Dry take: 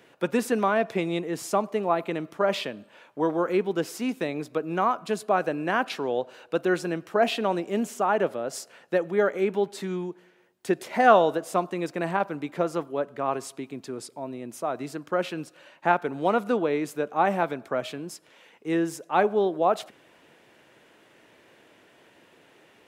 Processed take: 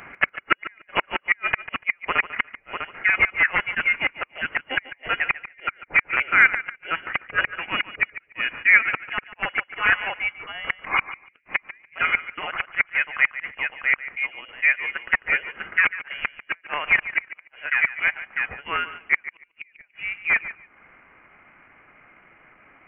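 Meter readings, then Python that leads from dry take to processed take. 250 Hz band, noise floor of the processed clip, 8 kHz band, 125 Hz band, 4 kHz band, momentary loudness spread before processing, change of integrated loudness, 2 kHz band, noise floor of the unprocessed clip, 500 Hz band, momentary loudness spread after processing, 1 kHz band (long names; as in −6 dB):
−15.5 dB, −61 dBFS, below −35 dB, can't be measured, +5.0 dB, 13 LU, +4.0 dB, +14.5 dB, −58 dBFS, −15.5 dB, 11 LU, −3.5 dB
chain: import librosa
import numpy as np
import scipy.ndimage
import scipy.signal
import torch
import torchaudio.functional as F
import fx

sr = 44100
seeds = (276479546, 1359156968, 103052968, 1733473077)

p1 = x + 10.0 ** (-4.0 / 20.0) * np.pad(x, (int(649 * sr / 1000.0), 0))[:len(x)]
p2 = fx.gate_flip(p1, sr, shuts_db=-14.0, range_db=-38)
p3 = (np.mod(10.0 ** (16.0 / 20.0) * p2 + 1.0, 2.0) - 1.0) / 10.0 ** (16.0 / 20.0)
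p4 = p2 + (p3 * librosa.db_to_amplitude(-4.0))
p5 = fx.low_shelf_res(p4, sr, hz=620.0, db=-13.0, q=3.0)
p6 = fx.notch(p5, sr, hz=860.0, q=12.0)
p7 = fx.transient(p6, sr, attack_db=-2, sustain_db=-8)
p8 = fx.rider(p7, sr, range_db=10, speed_s=2.0)
p9 = fx.freq_invert(p8, sr, carrier_hz=3100)
p10 = p9 + fx.echo_feedback(p9, sr, ms=145, feedback_pct=19, wet_db=-14.5, dry=0)
p11 = fx.dynamic_eq(p10, sr, hz=1400.0, q=2.0, threshold_db=-44.0, ratio=4.0, max_db=5)
y = p11 * librosa.db_to_amplitude(4.5)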